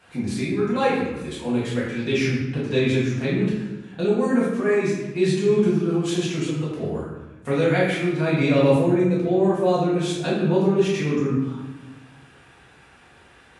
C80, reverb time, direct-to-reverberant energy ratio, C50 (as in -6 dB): 3.0 dB, 1.0 s, -8.5 dB, 0.5 dB